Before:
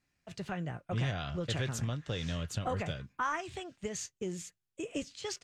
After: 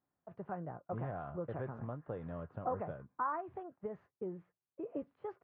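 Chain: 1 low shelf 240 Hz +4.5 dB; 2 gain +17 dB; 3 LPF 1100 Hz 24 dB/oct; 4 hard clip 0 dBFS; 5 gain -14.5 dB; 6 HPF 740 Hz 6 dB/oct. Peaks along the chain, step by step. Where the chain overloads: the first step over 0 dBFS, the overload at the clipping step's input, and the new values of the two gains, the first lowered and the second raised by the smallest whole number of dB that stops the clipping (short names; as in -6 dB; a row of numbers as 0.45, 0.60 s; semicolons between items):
-20.0, -3.0, -3.5, -3.5, -18.0, -25.0 dBFS; no overload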